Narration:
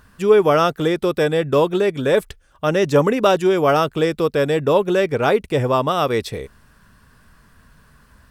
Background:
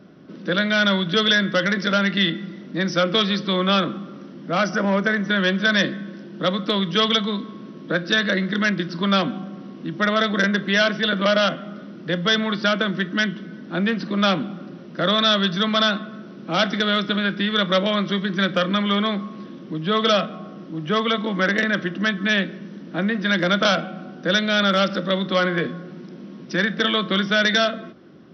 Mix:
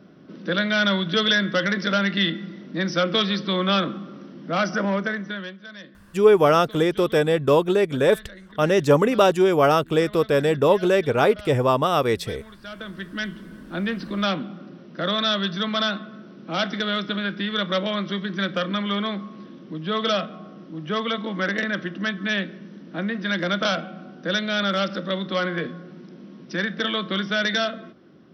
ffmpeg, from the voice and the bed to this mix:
-filter_complex "[0:a]adelay=5950,volume=-1.5dB[a];[1:a]volume=16dB,afade=t=out:st=4.8:d=0.77:silence=0.0944061,afade=t=in:st=12.6:d=0.95:silence=0.125893[b];[a][b]amix=inputs=2:normalize=0"

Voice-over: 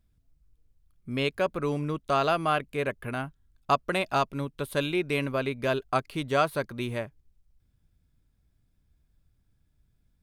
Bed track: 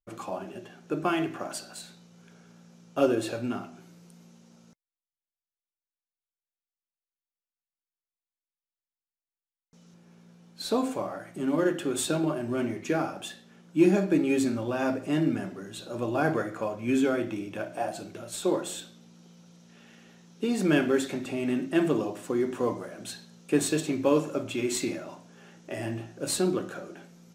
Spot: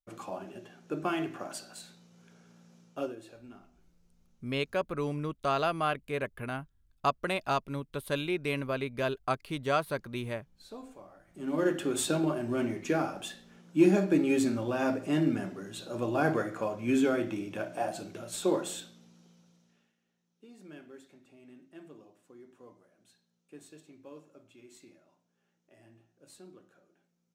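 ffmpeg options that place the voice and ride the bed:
-filter_complex "[0:a]adelay=3350,volume=-4dB[a];[1:a]volume=13dB,afade=t=out:st=2.77:d=0.38:silence=0.188365,afade=t=in:st=11.27:d=0.43:silence=0.133352,afade=t=out:st=18.65:d=1.29:silence=0.0595662[b];[a][b]amix=inputs=2:normalize=0"

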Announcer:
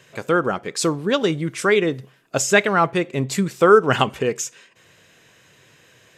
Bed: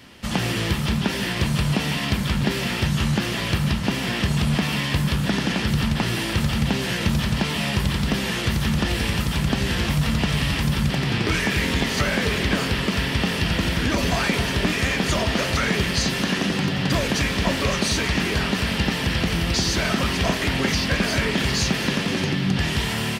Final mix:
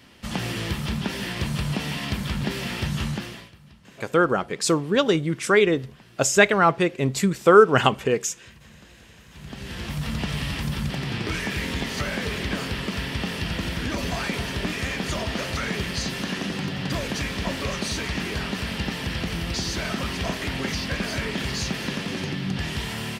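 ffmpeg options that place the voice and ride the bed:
-filter_complex "[0:a]adelay=3850,volume=-0.5dB[a];[1:a]volume=17.5dB,afade=t=out:st=3.02:d=0.49:silence=0.0668344,afade=t=in:st=9.29:d=0.9:silence=0.0749894[b];[a][b]amix=inputs=2:normalize=0"

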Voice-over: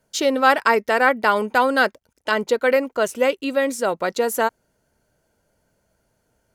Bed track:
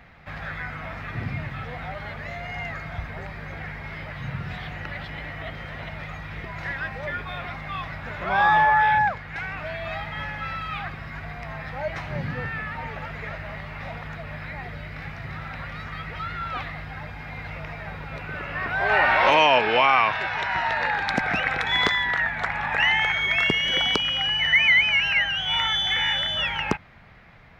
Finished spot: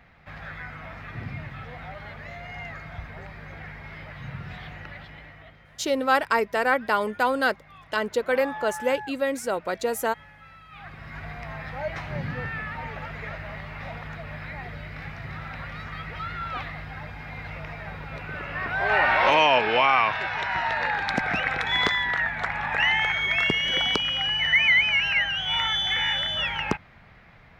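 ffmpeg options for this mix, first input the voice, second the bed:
-filter_complex "[0:a]adelay=5650,volume=-5.5dB[a];[1:a]volume=11dB,afade=t=out:st=4.69:d=0.91:silence=0.237137,afade=t=in:st=10.7:d=0.54:silence=0.158489[b];[a][b]amix=inputs=2:normalize=0"

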